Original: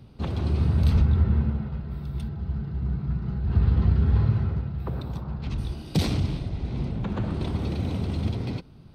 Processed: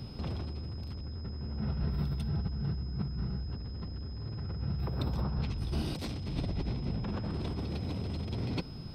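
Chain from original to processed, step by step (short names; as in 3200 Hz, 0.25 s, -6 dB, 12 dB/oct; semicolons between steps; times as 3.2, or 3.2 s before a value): soft clip -22.5 dBFS, distortion -9 dB; negative-ratio compressor -35 dBFS, ratio -1; whine 5100 Hz -53 dBFS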